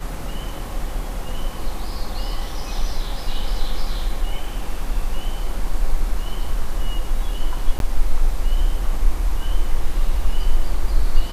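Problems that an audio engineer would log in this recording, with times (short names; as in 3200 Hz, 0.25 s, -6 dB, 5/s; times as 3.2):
7.79–7.8 gap 12 ms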